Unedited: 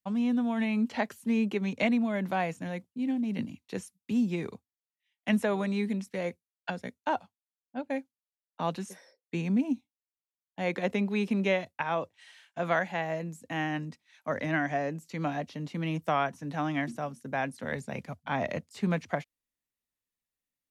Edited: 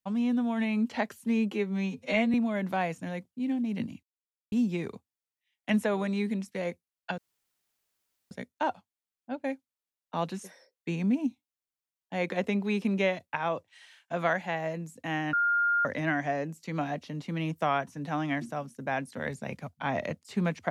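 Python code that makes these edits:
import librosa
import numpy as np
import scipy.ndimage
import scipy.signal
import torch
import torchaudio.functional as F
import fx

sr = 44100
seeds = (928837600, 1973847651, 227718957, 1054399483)

y = fx.edit(x, sr, fx.stretch_span(start_s=1.52, length_s=0.41, factor=2.0),
    fx.silence(start_s=3.62, length_s=0.49),
    fx.insert_room_tone(at_s=6.77, length_s=1.13),
    fx.bleep(start_s=13.79, length_s=0.52, hz=1410.0, db=-22.5), tone=tone)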